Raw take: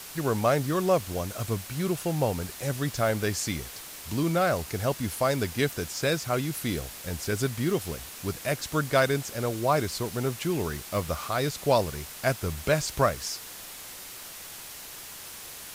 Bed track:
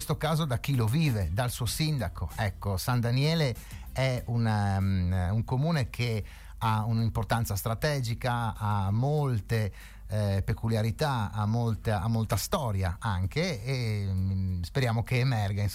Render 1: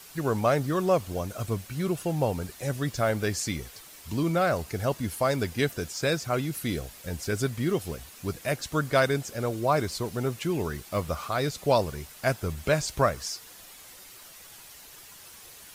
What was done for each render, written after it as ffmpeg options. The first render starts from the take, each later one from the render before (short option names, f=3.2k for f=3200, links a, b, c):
-af "afftdn=nr=8:nf=-43"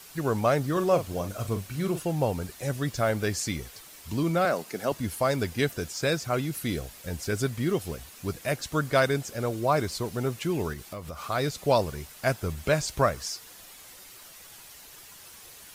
-filter_complex "[0:a]asettb=1/sr,asplit=3[a][b][c];[a]atrim=end=0.724[d];[b]atrim=start=0.72:end=2,asetpts=PTS-STARTPTS,afade=t=in:d=0.004:c=qsin,afade=t=out:st=1.276:d=0.004:c=qsin,asplit=2[e][f];[f]adelay=41,volume=-9.5dB[g];[e][g]amix=inputs=2:normalize=0,atrim=end_sample=56448[h];[c]atrim=start=1.996[i];[d][h]acrossfade=d=0.004:c1=hsin:c2=qsin[j];[j][i]acrossfade=d=0.004:c1=qsin:c2=hsin,asettb=1/sr,asplit=3[k][l][m];[k]atrim=end=4.454[n];[l]atrim=start=4.45:end=4.92,asetpts=PTS-STARTPTS,afade=t=in:d=0.004:c=qsin,afade=t=out:st=0.466:d=0.004:c=qsin,highpass=f=180:w=0.5412,highpass=f=180:w=1.3066[o];[m]atrim=start=4.916[p];[n][o]acrossfade=d=0.004:c1=hsin:c2=qsin[q];[q][p]acrossfade=d=0.004:c1=qsin:c2=hsin,asettb=1/sr,asplit=3[r][s][t];[r]atrim=end=10.734[u];[s]atrim=start=10.73:end=11.24,asetpts=PTS-STARTPTS,afade=t=in:d=0.004:c=qsin,afade=t=out:st=0.506:d=0.004:c=qsin,acompressor=threshold=-34dB:ratio=6:attack=3.2:release=140:knee=1:detection=peak[v];[t]atrim=start=11.236[w];[u][v]acrossfade=d=0.004:c1=hsin:c2=qsin[x];[x][w]acrossfade=d=0.004:c1=qsin:c2=hsin"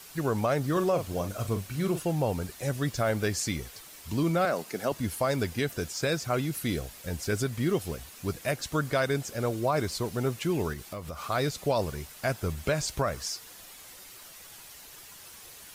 -af "alimiter=limit=-17dB:level=0:latency=1:release=85"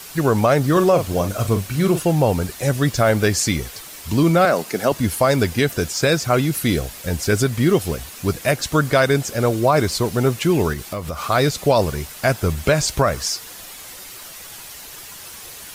-af "volume=11dB"